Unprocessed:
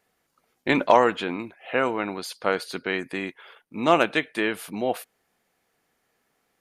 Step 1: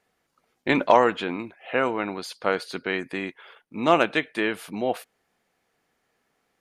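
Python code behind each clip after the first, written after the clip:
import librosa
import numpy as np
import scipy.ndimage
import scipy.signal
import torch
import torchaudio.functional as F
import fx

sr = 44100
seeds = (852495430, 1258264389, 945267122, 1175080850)

y = fx.high_shelf(x, sr, hz=11000.0, db=-10.5)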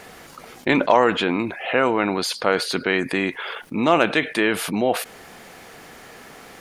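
y = fx.env_flatten(x, sr, amount_pct=50)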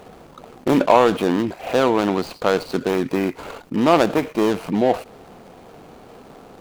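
y = scipy.signal.medfilt(x, 25)
y = y * librosa.db_to_amplitude(3.5)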